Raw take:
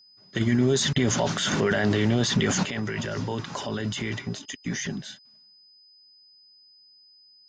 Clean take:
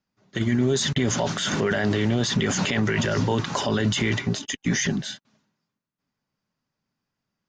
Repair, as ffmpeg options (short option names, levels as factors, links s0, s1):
-af "bandreject=f=5000:w=30,asetnsamples=n=441:p=0,asendcmd='2.63 volume volume 7dB',volume=1"